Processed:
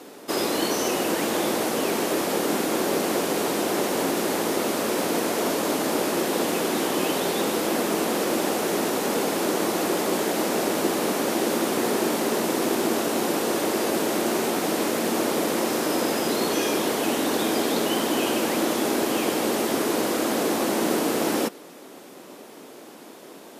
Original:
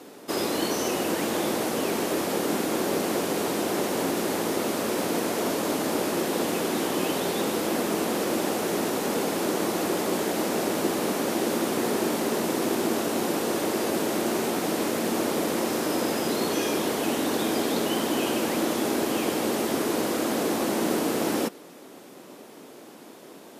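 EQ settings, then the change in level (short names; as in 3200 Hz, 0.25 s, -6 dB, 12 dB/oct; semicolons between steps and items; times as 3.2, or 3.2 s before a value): low shelf 150 Hz -7 dB; +3.0 dB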